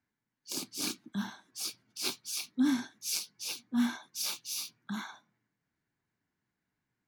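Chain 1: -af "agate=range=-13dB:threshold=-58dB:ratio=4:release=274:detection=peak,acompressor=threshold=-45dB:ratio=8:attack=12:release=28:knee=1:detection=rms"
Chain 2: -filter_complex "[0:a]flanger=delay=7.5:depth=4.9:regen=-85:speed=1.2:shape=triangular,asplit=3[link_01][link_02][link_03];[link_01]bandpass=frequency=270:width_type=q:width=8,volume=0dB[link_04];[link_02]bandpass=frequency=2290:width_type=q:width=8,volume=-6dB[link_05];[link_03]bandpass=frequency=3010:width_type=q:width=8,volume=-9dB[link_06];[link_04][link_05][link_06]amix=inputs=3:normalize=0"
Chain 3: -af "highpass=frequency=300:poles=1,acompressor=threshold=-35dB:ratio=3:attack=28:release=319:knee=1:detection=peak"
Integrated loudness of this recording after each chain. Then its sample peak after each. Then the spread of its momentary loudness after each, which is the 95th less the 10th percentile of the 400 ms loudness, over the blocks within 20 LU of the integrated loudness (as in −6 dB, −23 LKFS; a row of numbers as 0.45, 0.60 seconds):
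−45.5, −43.0, −38.5 LKFS; −27.5, −26.5, −19.0 dBFS; 4, 23, 7 LU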